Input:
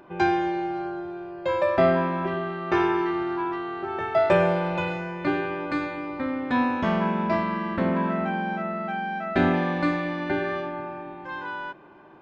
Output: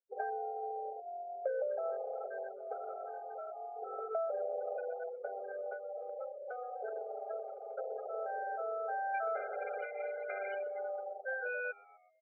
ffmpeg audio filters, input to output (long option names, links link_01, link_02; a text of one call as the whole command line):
ffmpeg -i in.wav -filter_complex "[0:a]aeval=exprs='max(val(0),0)':channel_layout=same,acrusher=bits=8:mix=0:aa=0.000001,alimiter=limit=-18.5dB:level=0:latency=1:release=212,asetnsamples=nb_out_samples=441:pad=0,asendcmd='9.14 equalizer g -2',equalizer=frequency=3000:width=0.51:gain=-13.5,acrusher=bits=4:mode=log:mix=0:aa=0.000001,bandreject=frequency=2700:width=8.5,afftfilt=real='re*gte(hypot(re,im),0.0251)':imag='im*gte(hypot(re,im),0.0251)':win_size=1024:overlap=0.75,acompressor=threshold=-39dB:ratio=10,asplit=5[link_01][link_02][link_03][link_04][link_05];[link_02]adelay=125,afreqshift=-87,volume=-22.5dB[link_06];[link_03]adelay=250,afreqshift=-174,volume=-27.5dB[link_07];[link_04]adelay=375,afreqshift=-261,volume=-32.6dB[link_08];[link_05]adelay=500,afreqshift=-348,volume=-37.6dB[link_09];[link_01][link_06][link_07][link_08][link_09]amix=inputs=5:normalize=0,adynamicequalizer=threshold=0.00158:dfrequency=1200:dqfactor=0.7:tfrequency=1200:tqfactor=0.7:attack=5:release=100:ratio=0.375:range=1.5:mode=cutabove:tftype=bell,afftfilt=real='re*eq(mod(floor(b*sr/1024/410),2),1)':imag='im*eq(mod(floor(b*sr/1024/410),2),1)':win_size=1024:overlap=0.75,volume=13dB" out.wav